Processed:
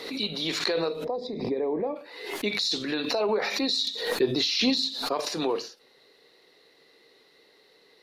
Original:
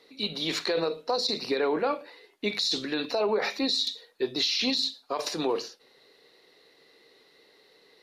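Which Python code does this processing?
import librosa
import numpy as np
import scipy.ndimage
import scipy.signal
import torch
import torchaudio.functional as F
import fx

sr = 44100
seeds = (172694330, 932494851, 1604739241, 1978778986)

y = fx.moving_average(x, sr, points=31, at=(1.03, 1.95), fade=0.02)
y = fx.low_shelf(y, sr, hz=490.0, db=6.5, at=(3.84, 5.2))
y = fx.pre_swell(y, sr, db_per_s=59.0)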